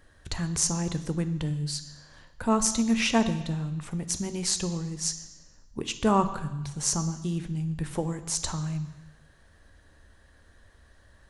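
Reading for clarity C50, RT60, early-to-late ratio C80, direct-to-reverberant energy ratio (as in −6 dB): 12.0 dB, 1.0 s, 14.0 dB, 9.5 dB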